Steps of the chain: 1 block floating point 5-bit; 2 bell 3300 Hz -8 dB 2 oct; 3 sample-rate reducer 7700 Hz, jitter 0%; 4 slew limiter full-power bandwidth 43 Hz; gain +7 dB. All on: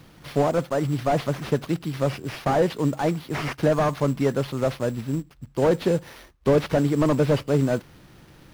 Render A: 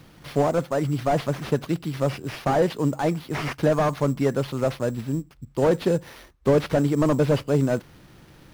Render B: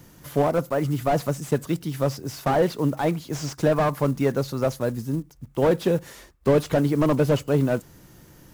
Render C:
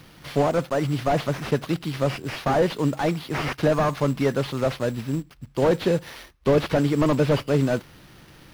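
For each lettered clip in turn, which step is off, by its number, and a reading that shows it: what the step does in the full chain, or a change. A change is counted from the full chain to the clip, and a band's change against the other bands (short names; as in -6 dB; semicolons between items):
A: 1, distortion -21 dB; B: 3, distortion -9 dB; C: 2, 4 kHz band +3.0 dB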